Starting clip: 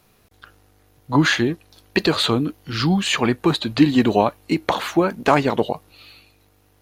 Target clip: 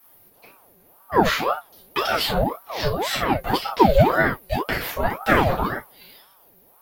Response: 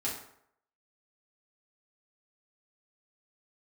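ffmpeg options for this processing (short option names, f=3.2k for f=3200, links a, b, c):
-filter_complex "[1:a]atrim=start_sample=2205,atrim=end_sample=3528[a];[0:a][a]afir=irnorm=-1:irlink=0,aexciter=amount=9.2:drive=3.8:freq=11k,aeval=exprs='val(0)*sin(2*PI*670*n/s+670*0.6/1.9*sin(2*PI*1.9*n/s))':c=same,volume=-4dB"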